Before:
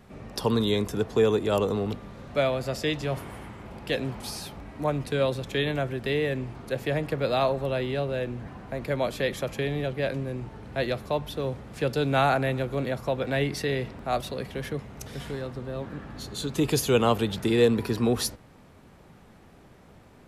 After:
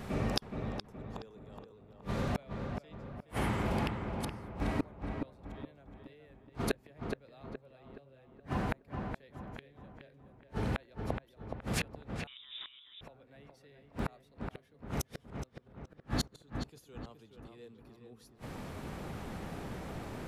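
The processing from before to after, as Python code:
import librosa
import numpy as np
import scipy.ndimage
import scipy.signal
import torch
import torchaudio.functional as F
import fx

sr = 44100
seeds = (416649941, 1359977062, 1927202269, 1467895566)

y = fx.gate_flip(x, sr, shuts_db=-28.0, range_db=-42)
y = fx.echo_filtered(y, sr, ms=421, feedback_pct=45, hz=2400.0, wet_db=-5.0)
y = fx.freq_invert(y, sr, carrier_hz=3700, at=(12.27, 13.01))
y = y * librosa.db_to_amplitude(9.5)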